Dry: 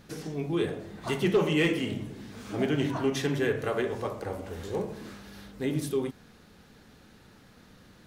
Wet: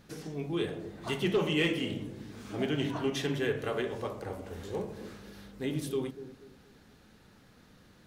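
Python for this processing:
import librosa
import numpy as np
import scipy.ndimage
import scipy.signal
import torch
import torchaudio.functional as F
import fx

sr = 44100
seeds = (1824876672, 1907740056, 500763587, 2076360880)

p1 = fx.dynamic_eq(x, sr, hz=3100.0, q=2.4, threshold_db=-52.0, ratio=4.0, max_db=5)
p2 = p1 + fx.echo_bbd(p1, sr, ms=240, stages=1024, feedback_pct=33, wet_db=-12.5, dry=0)
y = p2 * 10.0 ** (-4.0 / 20.0)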